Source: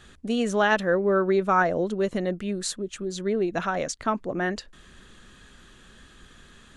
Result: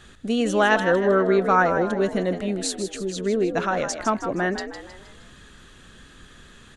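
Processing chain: frequency-shifting echo 157 ms, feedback 45%, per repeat +63 Hz, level -9.5 dB; trim +2.5 dB

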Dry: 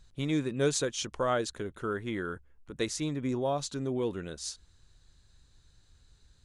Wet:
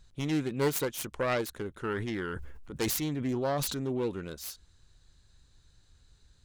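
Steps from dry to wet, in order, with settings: self-modulated delay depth 0.23 ms; 1.78–3.92 s: decay stretcher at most 29 dB/s

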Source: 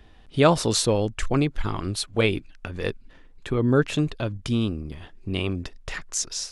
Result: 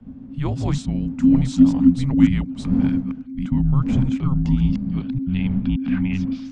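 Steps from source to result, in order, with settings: chunks repeated in reverse 576 ms, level -1.5 dB; wind noise 430 Hz -35 dBFS; low-pass sweep 7.7 kHz -> 3 kHz, 4.21–5.92 s; level rider; RIAA curve playback; frequency shift -280 Hz; trim -13 dB

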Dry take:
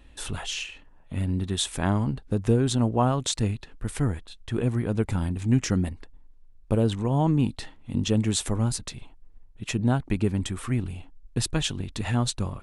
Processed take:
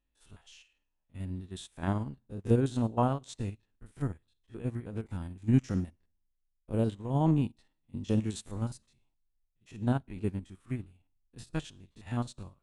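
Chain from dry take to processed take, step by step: spectrogram pixelated in time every 50 ms; two-slope reverb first 0.64 s, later 1.8 s, from -23 dB, DRR 16.5 dB; upward expansion 2.5:1, over -38 dBFS

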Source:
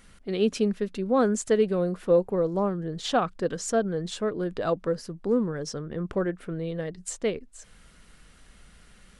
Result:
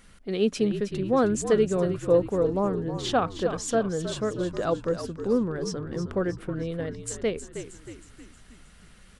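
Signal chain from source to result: frequency-shifting echo 315 ms, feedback 50%, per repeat -53 Hz, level -10 dB

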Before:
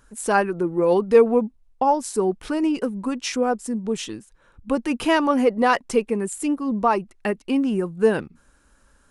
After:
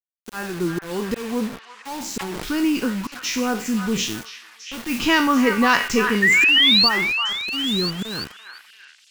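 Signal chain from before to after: spectral sustain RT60 0.38 s; steep low-pass 7.3 kHz 72 dB/octave; peaking EQ 600 Hz -14.5 dB 1.5 oct; 6.78–7.39 s: compression 3:1, threshold -29 dBFS, peak gain reduction 6.5 dB; slow attack 402 ms; bit crusher 7-bit; 4.06–5.01 s: modulation noise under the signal 13 dB; 6.22–6.89 s: painted sound rise 1.8–4.7 kHz -22 dBFS; repeats whose band climbs or falls 339 ms, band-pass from 1.4 kHz, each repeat 0.7 oct, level -4 dB; 1.87–2.60 s: decay stretcher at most 24 dB/s; trim +7 dB

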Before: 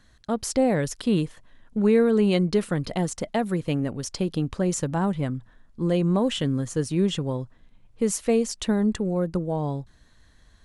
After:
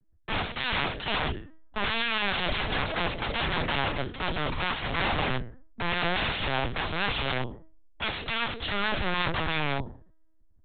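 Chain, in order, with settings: spectral sustain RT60 0.58 s; level-controlled noise filter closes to 390 Hz, open at -21 dBFS; integer overflow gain 24.5 dB; treble shelf 2.3 kHz +4 dB; LPC vocoder at 8 kHz pitch kept; three bands expanded up and down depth 40%; trim +2 dB

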